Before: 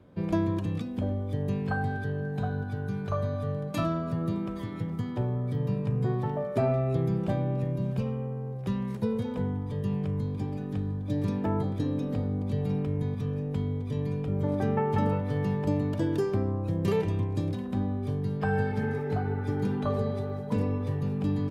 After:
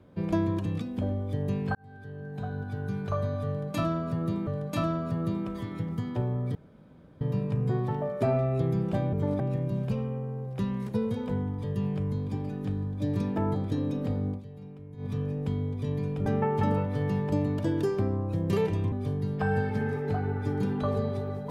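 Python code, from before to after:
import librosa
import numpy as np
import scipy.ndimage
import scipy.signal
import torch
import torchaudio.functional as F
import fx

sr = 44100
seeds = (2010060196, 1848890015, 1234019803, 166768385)

y = fx.edit(x, sr, fx.fade_in_span(start_s=1.75, length_s=1.14),
    fx.repeat(start_s=3.48, length_s=0.99, count=2),
    fx.insert_room_tone(at_s=5.56, length_s=0.66),
    fx.fade_down_up(start_s=12.38, length_s=0.79, db=-15.5, fade_s=0.12),
    fx.move(start_s=14.34, length_s=0.27, to_s=7.48),
    fx.cut(start_s=17.27, length_s=0.67), tone=tone)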